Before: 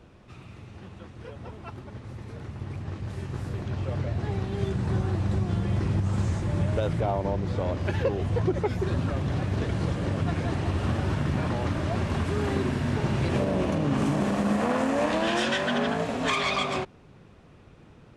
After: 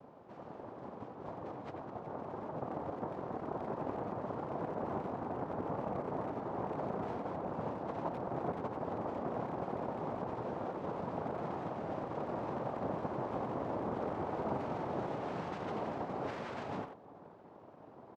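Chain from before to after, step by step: compression 5:1, threshold -33 dBFS, peak gain reduction 12 dB; noise-vocoded speech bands 2; low-pass 1.4 kHz 12 dB/octave; speakerphone echo 90 ms, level -7 dB; trim -2 dB

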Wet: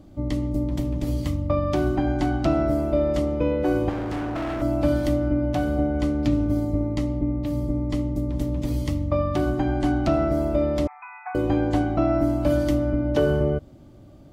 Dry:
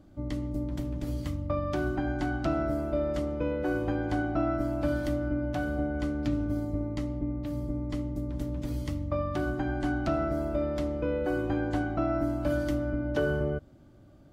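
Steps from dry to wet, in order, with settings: peaking EQ 1.5 kHz -7.5 dB 0.4 oct; 3.89–4.62 s: hard clipper -33.5 dBFS, distortion -16 dB; 10.87–11.35 s: brick-wall FIR band-pass 700–2600 Hz; trim +7.5 dB

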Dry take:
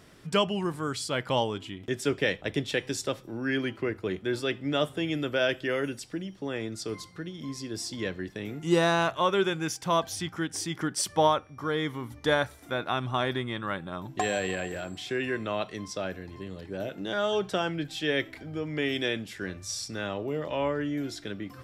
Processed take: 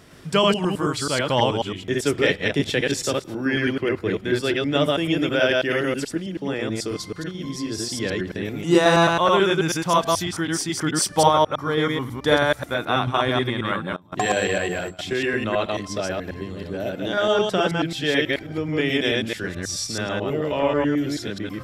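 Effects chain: chunks repeated in reverse 108 ms, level -0.5 dB; 13.96–14.99 s: gate with hold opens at -23 dBFS; trim +5 dB

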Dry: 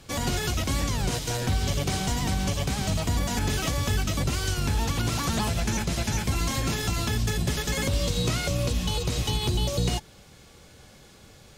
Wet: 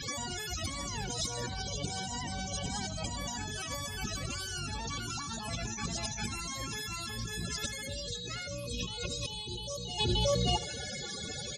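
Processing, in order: tilt EQ +2.5 dB/octave; loudest bins only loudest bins 32; echo from a far wall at 99 m, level -9 dB; compressor with a negative ratio -43 dBFS, ratio -1; on a send: feedback delay 76 ms, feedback 43%, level -18 dB; on the sum: trim +6 dB

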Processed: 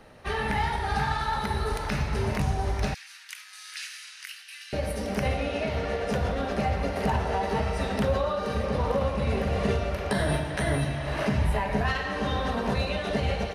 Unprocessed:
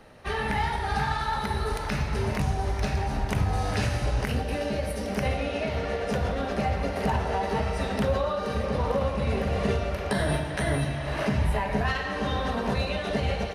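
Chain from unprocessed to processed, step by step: 2.94–4.73 s: Bessel high-pass 2.6 kHz, order 8

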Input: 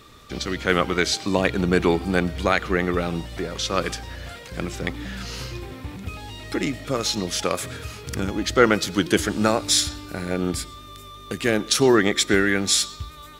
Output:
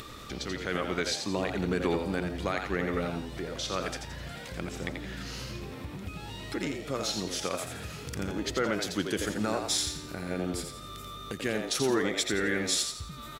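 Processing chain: peak limiter -9 dBFS, peak gain reduction 7 dB; frequency-shifting echo 85 ms, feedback 33%, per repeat +82 Hz, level -6 dB; upward compressor, threshold -25 dBFS; trim -8.5 dB

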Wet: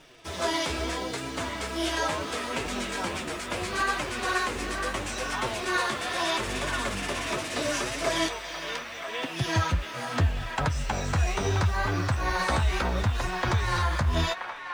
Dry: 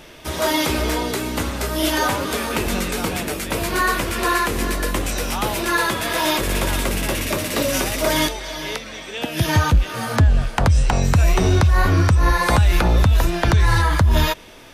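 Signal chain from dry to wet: low-pass 8.8 kHz 24 dB/octave; bass shelf 310 Hz -4.5 dB; in parallel at -9 dB: bit crusher 6-bit; on the sum: formant-preserving pitch shift +1 st; flange 0.75 Hz, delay 6.5 ms, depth 7.9 ms, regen +37%; on a send: feedback echo behind a band-pass 978 ms, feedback 58%, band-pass 1.5 kHz, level -6.5 dB; on the sum: trim -6 dB

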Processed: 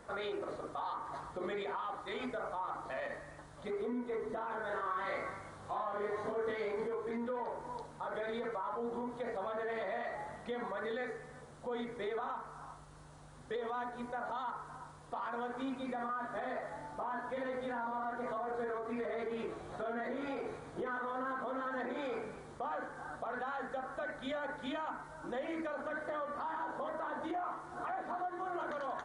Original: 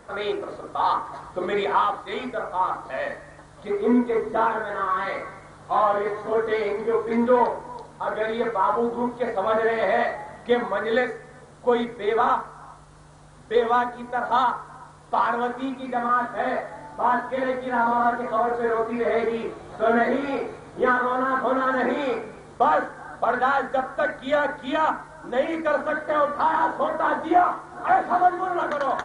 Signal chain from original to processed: compression 4:1, threshold -26 dBFS, peak gain reduction 11 dB; peak limiter -24.5 dBFS, peak gain reduction 8.5 dB; 4.68–6.84 s: doubling 29 ms -3.5 dB; trim -6.5 dB

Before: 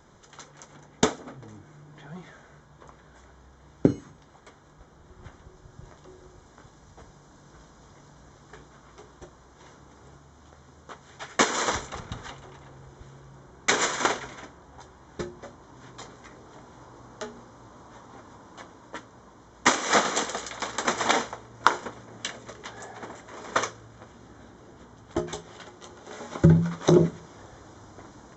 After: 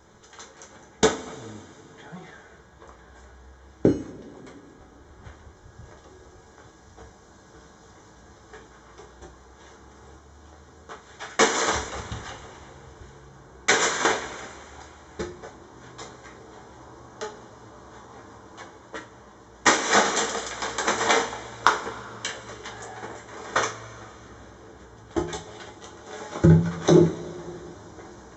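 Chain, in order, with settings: peaking EQ 150 Hz -5 dB 0.63 oct; two-slope reverb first 0.27 s, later 3 s, from -21 dB, DRR 0 dB

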